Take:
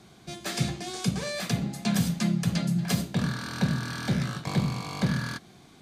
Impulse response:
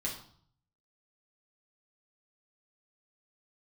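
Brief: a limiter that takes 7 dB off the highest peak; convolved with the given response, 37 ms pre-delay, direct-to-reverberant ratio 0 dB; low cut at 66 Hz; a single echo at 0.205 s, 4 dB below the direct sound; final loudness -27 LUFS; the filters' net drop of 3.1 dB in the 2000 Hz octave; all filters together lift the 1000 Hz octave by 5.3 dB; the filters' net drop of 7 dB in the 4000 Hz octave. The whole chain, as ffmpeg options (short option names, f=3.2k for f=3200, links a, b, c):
-filter_complex "[0:a]highpass=66,equalizer=f=1k:t=o:g=9,equalizer=f=2k:t=o:g=-6,equalizer=f=4k:t=o:g=-7.5,alimiter=limit=-20.5dB:level=0:latency=1,aecho=1:1:205:0.631,asplit=2[a][b];[1:a]atrim=start_sample=2205,adelay=37[c];[b][c]afir=irnorm=-1:irlink=0,volume=-2.5dB[d];[a][d]amix=inputs=2:normalize=0,volume=-2dB"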